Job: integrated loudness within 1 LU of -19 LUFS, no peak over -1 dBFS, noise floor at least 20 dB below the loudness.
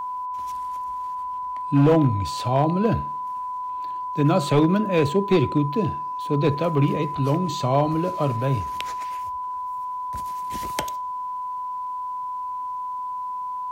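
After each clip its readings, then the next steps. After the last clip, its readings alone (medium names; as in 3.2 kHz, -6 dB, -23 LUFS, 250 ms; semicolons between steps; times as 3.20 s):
clipped samples 0.4%; clipping level -11.0 dBFS; steady tone 1 kHz; tone level -27 dBFS; loudness -24.5 LUFS; peak level -11.0 dBFS; loudness target -19.0 LUFS
-> clip repair -11 dBFS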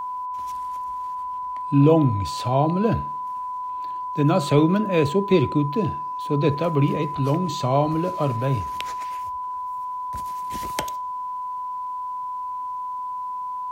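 clipped samples 0.0%; steady tone 1 kHz; tone level -27 dBFS
-> band-stop 1 kHz, Q 30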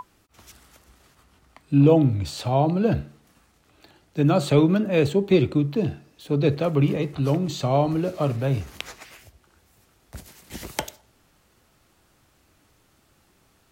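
steady tone not found; loudness -22.0 LUFS; peak level -5.5 dBFS; loudness target -19.0 LUFS
-> trim +3 dB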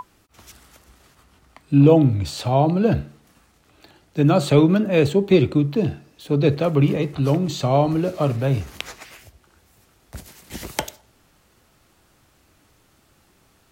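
loudness -19.5 LUFS; peak level -2.5 dBFS; noise floor -60 dBFS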